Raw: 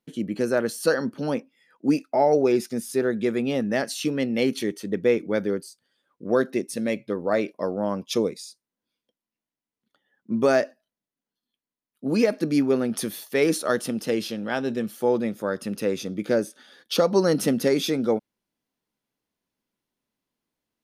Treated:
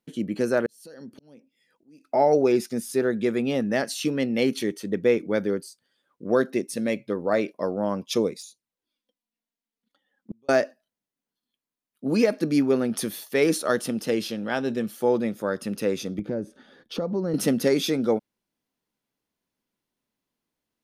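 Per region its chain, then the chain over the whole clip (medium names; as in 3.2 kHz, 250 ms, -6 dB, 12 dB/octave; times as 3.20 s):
0.66–2.05 s: peaking EQ 1.2 kHz -11.5 dB 1.5 oct + compression 4:1, threshold -36 dBFS + slow attack 540 ms
8.41–10.49 s: peaking EQ 3.7 kHz +3 dB 0.82 oct + inverted gate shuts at -24 dBFS, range -39 dB + touch-sensitive flanger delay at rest 4.4 ms, full sweep at -41.5 dBFS
16.19–17.34 s: tilt EQ -4 dB/octave + compression 2:1, threshold -34 dBFS
whole clip: none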